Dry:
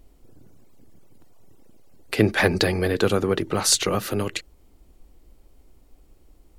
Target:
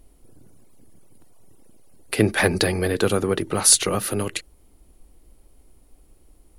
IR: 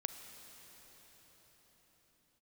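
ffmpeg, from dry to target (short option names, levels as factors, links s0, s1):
-af "equalizer=f=10000:t=o:w=0.26:g=14.5"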